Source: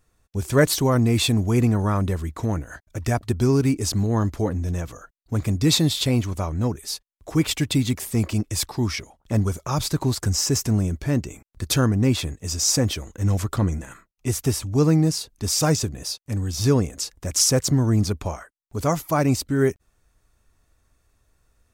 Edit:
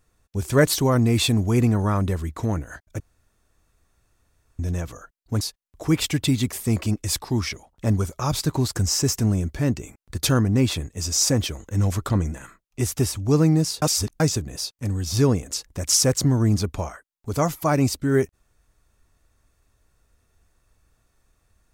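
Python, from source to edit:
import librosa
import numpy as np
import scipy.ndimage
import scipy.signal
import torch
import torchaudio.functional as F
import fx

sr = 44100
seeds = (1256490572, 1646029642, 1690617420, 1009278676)

y = fx.edit(x, sr, fx.room_tone_fill(start_s=3.0, length_s=1.59),
    fx.cut(start_s=5.41, length_s=1.47),
    fx.reverse_span(start_s=15.29, length_s=0.38), tone=tone)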